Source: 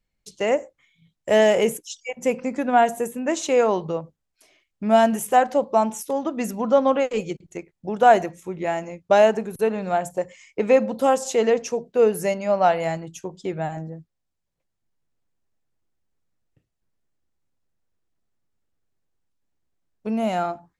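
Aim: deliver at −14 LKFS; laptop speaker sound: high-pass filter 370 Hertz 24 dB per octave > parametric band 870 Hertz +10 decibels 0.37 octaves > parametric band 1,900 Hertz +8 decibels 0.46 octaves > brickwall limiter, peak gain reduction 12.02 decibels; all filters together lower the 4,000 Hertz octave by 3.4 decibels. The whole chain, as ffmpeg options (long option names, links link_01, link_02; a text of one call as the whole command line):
ffmpeg -i in.wav -af "highpass=frequency=370:width=0.5412,highpass=frequency=370:width=1.3066,equalizer=frequency=870:width_type=o:width=0.37:gain=10,equalizer=frequency=1900:width_type=o:width=0.46:gain=8,equalizer=frequency=4000:width_type=o:gain=-7,volume=10dB,alimiter=limit=-2dB:level=0:latency=1" out.wav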